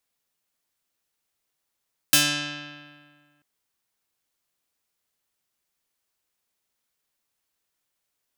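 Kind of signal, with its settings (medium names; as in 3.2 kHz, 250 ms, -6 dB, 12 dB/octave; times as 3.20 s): plucked string D3, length 1.29 s, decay 1.82 s, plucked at 0.31, medium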